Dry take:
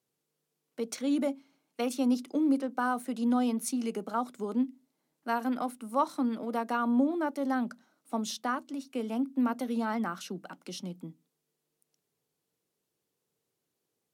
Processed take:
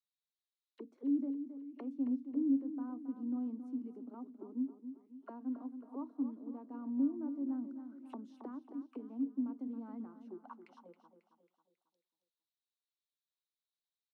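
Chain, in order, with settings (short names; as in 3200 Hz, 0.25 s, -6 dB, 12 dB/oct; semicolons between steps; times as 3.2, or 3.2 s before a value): auto-wah 280–3900 Hz, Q 6.6, down, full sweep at -32.5 dBFS; Chebyshev high-pass 240 Hz, order 2; bell 1000 Hz +8.5 dB 0.51 oct; feedback echo 0.272 s, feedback 46%, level -10 dB; 7.64–10.06 mismatched tape noise reduction encoder only; gain -3 dB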